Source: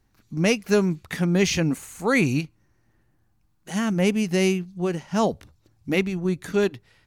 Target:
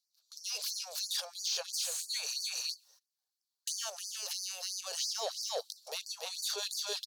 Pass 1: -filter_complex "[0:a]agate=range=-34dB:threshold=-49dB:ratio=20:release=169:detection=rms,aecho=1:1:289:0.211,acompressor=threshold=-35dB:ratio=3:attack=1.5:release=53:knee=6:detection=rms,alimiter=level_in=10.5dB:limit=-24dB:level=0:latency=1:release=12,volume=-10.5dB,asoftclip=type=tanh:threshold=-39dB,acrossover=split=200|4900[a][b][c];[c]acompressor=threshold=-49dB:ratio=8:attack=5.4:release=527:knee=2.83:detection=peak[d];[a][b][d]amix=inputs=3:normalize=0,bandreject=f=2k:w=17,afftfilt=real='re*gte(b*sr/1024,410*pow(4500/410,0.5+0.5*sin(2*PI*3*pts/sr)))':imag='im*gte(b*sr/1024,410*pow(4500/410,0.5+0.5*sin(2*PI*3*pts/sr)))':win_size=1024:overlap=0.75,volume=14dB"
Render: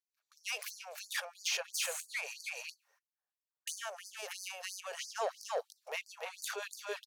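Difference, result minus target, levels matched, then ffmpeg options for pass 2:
4000 Hz band -3.5 dB
-filter_complex "[0:a]agate=range=-34dB:threshold=-49dB:ratio=20:release=169:detection=rms,aecho=1:1:289:0.211,acompressor=threshold=-35dB:ratio=3:attack=1.5:release=53:knee=6:detection=rms,highshelf=f=3k:t=q:w=3:g=12.5,alimiter=level_in=10.5dB:limit=-24dB:level=0:latency=1:release=12,volume=-10.5dB,asoftclip=type=tanh:threshold=-39dB,acrossover=split=200|4900[a][b][c];[c]acompressor=threshold=-49dB:ratio=8:attack=5.4:release=527:knee=2.83:detection=peak[d];[a][b][d]amix=inputs=3:normalize=0,bandreject=f=2k:w=17,afftfilt=real='re*gte(b*sr/1024,410*pow(4500/410,0.5+0.5*sin(2*PI*3*pts/sr)))':imag='im*gte(b*sr/1024,410*pow(4500/410,0.5+0.5*sin(2*PI*3*pts/sr)))':win_size=1024:overlap=0.75,volume=14dB"

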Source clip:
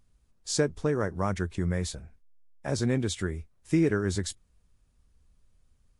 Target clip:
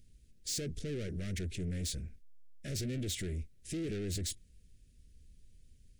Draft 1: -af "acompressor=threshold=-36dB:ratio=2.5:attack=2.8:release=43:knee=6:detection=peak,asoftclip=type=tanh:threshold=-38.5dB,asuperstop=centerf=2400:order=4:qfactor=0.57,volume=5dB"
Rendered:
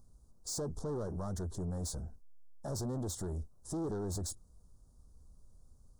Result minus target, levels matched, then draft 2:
1000 Hz band +18.0 dB; compressor: peak gain reduction +4 dB
-af "acompressor=threshold=-29dB:ratio=2.5:attack=2.8:release=43:knee=6:detection=peak,asoftclip=type=tanh:threshold=-38.5dB,asuperstop=centerf=960:order=4:qfactor=0.57,volume=5dB"

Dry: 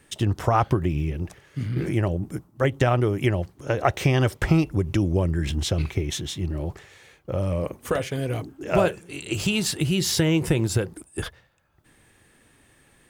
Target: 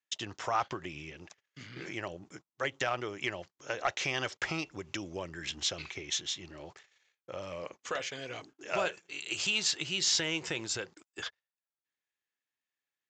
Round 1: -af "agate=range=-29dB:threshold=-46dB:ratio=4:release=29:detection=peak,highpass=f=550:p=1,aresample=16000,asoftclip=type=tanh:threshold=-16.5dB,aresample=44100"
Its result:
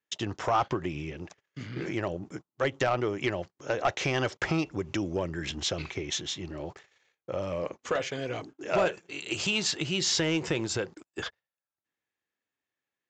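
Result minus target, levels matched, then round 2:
500 Hz band +5.0 dB
-af "agate=range=-29dB:threshold=-46dB:ratio=4:release=29:detection=peak,highpass=f=2.1k:p=1,aresample=16000,asoftclip=type=tanh:threshold=-16.5dB,aresample=44100"

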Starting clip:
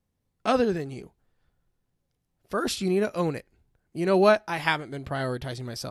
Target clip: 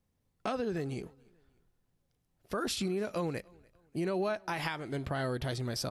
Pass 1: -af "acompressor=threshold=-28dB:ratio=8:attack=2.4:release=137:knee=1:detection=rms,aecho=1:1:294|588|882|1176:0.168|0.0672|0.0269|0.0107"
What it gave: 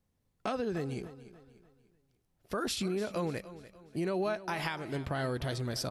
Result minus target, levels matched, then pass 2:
echo-to-direct +11.5 dB
-af "acompressor=threshold=-28dB:ratio=8:attack=2.4:release=137:knee=1:detection=rms,aecho=1:1:294|588:0.0447|0.0179"

